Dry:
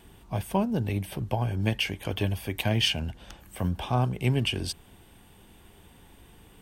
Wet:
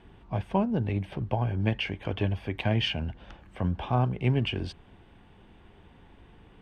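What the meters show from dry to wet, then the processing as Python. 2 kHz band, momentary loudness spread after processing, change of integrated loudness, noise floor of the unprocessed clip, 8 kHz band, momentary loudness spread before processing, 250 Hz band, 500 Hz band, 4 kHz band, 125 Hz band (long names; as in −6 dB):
−2.0 dB, 9 LU, −1.0 dB, −55 dBFS, below −15 dB, 10 LU, 0.0 dB, 0.0 dB, −5.0 dB, 0.0 dB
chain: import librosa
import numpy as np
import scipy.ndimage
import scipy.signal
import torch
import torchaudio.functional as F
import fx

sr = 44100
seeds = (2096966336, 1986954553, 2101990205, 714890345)

y = scipy.signal.sosfilt(scipy.signal.butter(2, 2600.0, 'lowpass', fs=sr, output='sos'), x)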